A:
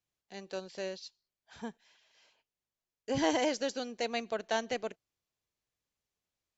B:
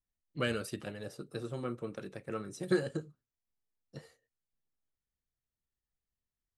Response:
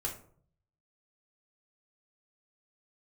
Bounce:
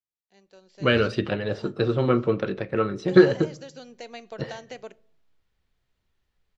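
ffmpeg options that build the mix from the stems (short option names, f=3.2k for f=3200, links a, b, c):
-filter_complex "[0:a]acompressor=threshold=-33dB:ratio=6,volume=-16dB,asplit=2[a][b];[b]volume=-16.5dB[c];[1:a]lowpass=f=4.2k:w=0.5412,lowpass=f=4.2k:w=1.3066,adelay=450,volume=2dB,asplit=2[d][e];[e]volume=-14.5dB[f];[2:a]atrim=start_sample=2205[g];[c][f]amix=inputs=2:normalize=0[h];[h][g]afir=irnorm=-1:irlink=0[i];[a][d][i]amix=inputs=3:normalize=0,dynaudnorm=f=550:g=3:m=14.5dB"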